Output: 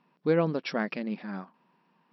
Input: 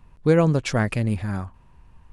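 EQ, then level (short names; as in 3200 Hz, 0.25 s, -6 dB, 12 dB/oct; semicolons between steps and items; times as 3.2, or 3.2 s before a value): brick-wall FIR band-pass 160–5700 Hz; -6.0 dB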